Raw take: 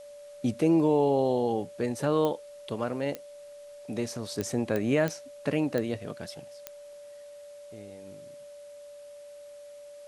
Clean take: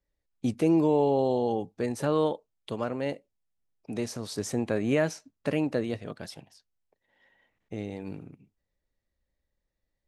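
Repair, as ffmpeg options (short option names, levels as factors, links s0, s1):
-af "adeclick=t=4,bandreject=f=580:w=30,agate=range=0.0891:threshold=0.0112,asetnsamples=n=441:p=0,asendcmd='7.22 volume volume 12dB',volume=1"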